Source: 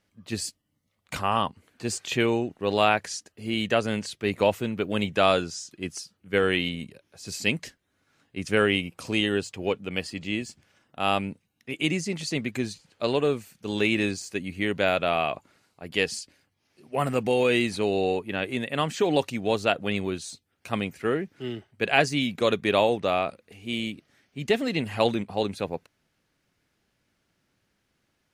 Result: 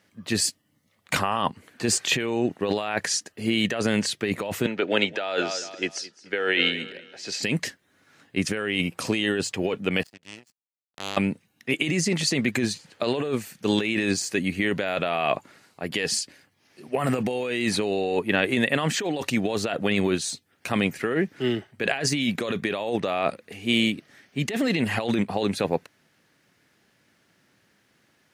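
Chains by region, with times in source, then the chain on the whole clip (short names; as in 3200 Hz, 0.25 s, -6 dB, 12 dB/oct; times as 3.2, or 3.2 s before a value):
4.66–7.43 Butterworth band-stop 1100 Hz, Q 6.9 + three-band isolator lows -16 dB, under 320 Hz, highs -23 dB, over 6100 Hz + feedback echo 0.215 s, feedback 33%, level -20 dB
10.03–11.17 compressor 2.5:1, threshold -36 dBFS + power-law curve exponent 3
whole clip: negative-ratio compressor -29 dBFS, ratio -1; HPF 120 Hz; bell 1800 Hz +4.5 dB 0.31 oct; gain +5 dB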